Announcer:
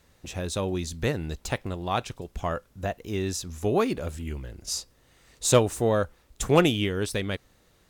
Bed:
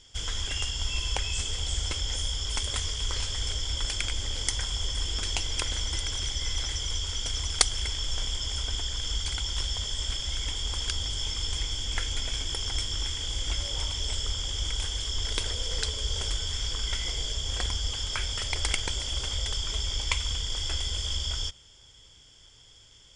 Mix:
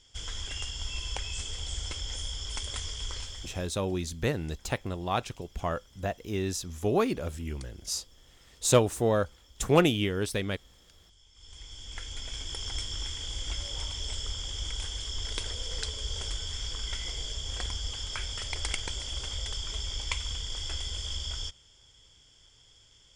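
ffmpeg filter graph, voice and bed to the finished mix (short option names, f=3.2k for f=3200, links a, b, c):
-filter_complex "[0:a]adelay=3200,volume=-2dB[a];[1:a]volume=19dB,afade=t=out:st=3.04:d=0.71:silence=0.0668344,afade=t=in:st=11.32:d=1.36:silence=0.0595662[b];[a][b]amix=inputs=2:normalize=0"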